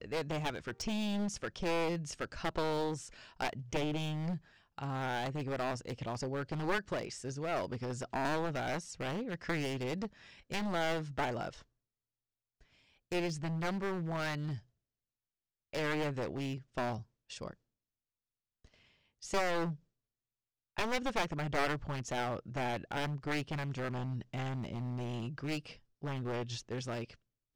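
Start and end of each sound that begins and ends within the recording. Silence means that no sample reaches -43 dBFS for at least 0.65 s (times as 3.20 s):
13.12–14.58 s
15.74–17.53 s
19.23–19.75 s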